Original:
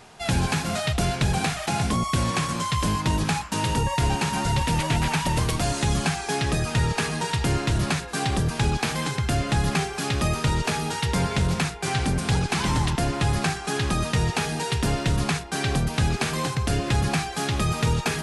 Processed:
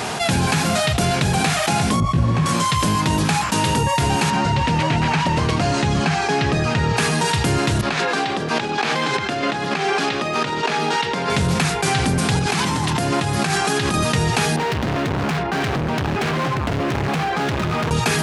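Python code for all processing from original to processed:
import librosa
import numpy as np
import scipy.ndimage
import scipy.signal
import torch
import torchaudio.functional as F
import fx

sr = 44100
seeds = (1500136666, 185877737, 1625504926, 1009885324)

y = fx.chain(x, sr, fx.riaa(side='playback'),
    fx.detune_double(cents=32), at=(2.0, 2.46))
y = fx.chain(y, sr, fx.air_absorb(metres=110.0),
    fx.notch(hz=3500.0, q=22.0), at=(4.3, 6.97))
y = fx.chain(y, sr, fx.over_compress(threshold_db=-32.0, ratio=-1.0),
    fx.bandpass_edges(low_hz=260.0, high_hz=4400.0), at=(7.81, 11.3))
y = fx.chain(y, sr, fx.highpass(hz=87.0, slope=12),
    fx.over_compress(threshold_db=-30.0, ratio=-1.0), at=(12.39, 13.94))
y = fx.chain(y, sr, fx.lowpass(hz=2200.0, slope=12),
    fx.overload_stage(gain_db=32.0), at=(14.56, 17.91))
y = scipy.signal.sosfilt(scipy.signal.butter(2, 94.0, 'highpass', fs=sr, output='sos'), y)
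y = fx.hum_notches(y, sr, base_hz=60, count=2)
y = fx.env_flatten(y, sr, amount_pct=70)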